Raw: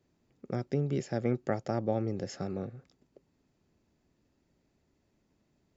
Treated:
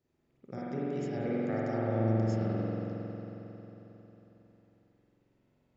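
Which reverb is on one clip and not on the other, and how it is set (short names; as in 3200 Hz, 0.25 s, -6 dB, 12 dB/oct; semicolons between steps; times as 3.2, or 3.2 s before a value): spring tank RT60 3.9 s, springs 45 ms, chirp 55 ms, DRR -9 dB; gain -8.5 dB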